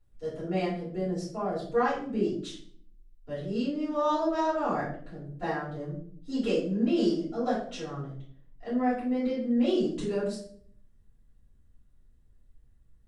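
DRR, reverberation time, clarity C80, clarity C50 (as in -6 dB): -11.0 dB, 0.55 s, 8.5 dB, 4.5 dB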